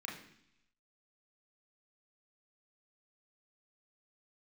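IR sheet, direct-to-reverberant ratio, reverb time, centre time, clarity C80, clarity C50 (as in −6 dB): −3.0 dB, 0.70 s, 37 ms, 9.5 dB, 6.0 dB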